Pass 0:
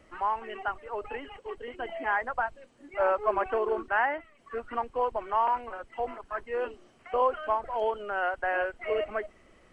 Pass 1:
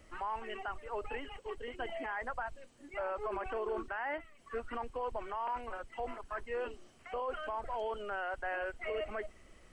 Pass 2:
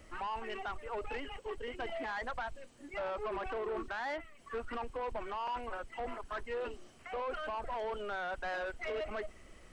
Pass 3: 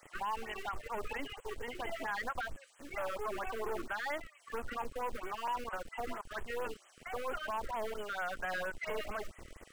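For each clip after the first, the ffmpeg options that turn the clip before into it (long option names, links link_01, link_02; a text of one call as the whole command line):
ffmpeg -i in.wav -af "highshelf=frequency=3700:gain=10,alimiter=level_in=1dB:limit=-24dB:level=0:latency=1:release=24,volume=-1dB,lowshelf=frequency=100:gain=9.5,volume=-4.5dB" out.wav
ffmpeg -i in.wav -af "asoftclip=type=tanh:threshold=-35.5dB,volume=3dB" out.wav
ffmpeg -i in.wav -filter_complex "[0:a]acrossover=split=730[link_01][link_02];[link_01]acrusher=bits=6:dc=4:mix=0:aa=0.000001[link_03];[link_03][link_02]amix=inputs=2:normalize=0,afftfilt=real='re*(1-between(b*sr/1024,770*pow(4900/770,0.5+0.5*sin(2*PI*4.4*pts/sr))/1.41,770*pow(4900/770,0.5+0.5*sin(2*PI*4.4*pts/sr))*1.41))':imag='im*(1-between(b*sr/1024,770*pow(4900/770,0.5+0.5*sin(2*PI*4.4*pts/sr))/1.41,770*pow(4900/770,0.5+0.5*sin(2*PI*4.4*pts/sr))*1.41))':win_size=1024:overlap=0.75,volume=3dB" out.wav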